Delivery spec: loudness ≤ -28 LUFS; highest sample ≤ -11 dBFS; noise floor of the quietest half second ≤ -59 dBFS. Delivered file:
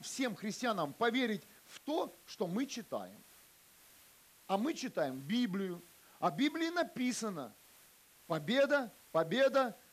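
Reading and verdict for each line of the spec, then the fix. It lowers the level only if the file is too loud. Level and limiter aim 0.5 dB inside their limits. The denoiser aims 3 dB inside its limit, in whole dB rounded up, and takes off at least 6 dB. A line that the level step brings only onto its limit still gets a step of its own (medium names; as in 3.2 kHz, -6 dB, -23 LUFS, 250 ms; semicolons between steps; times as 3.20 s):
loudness -36.0 LUFS: pass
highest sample -19.0 dBFS: pass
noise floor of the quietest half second -63 dBFS: pass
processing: none needed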